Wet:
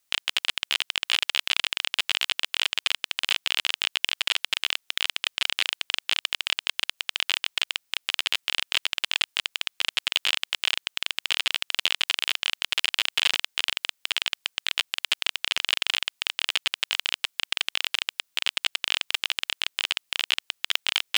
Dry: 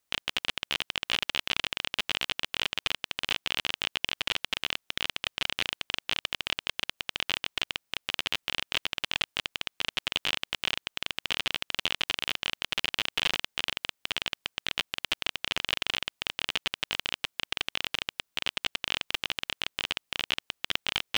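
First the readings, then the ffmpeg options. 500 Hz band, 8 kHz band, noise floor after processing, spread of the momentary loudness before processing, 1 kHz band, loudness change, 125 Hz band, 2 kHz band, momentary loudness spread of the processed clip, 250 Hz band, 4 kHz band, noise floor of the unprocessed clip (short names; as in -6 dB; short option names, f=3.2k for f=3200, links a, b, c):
-3.0 dB, +7.0 dB, -73 dBFS, 4 LU, +1.0 dB, +5.0 dB, under -10 dB, +4.5 dB, 4 LU, n/a, +5.5 dB, -79 dBFS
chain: -af "aeval=exprs='0.596*(cos(1*acos(clip(val(0)/0.596,-1,1)))-cos(1*PI/2))+0.0376*(cos(8*acos(clip(val(0)/0.596,-1,1)))-cos(8*PI/2))':c=same,tiltshelf=f=1.3k:g=-5,volume=2dB"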